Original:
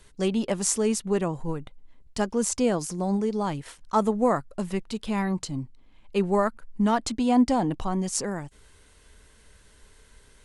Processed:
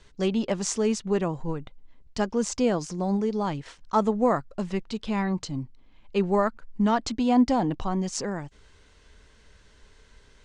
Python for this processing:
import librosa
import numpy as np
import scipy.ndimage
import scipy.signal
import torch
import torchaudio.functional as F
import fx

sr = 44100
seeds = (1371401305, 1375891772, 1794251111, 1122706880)

y = scipy.signal.sosfilt(scipy.signal.butter(4, 6700.0, 'lowpass', fs=sr, output='sos'), x)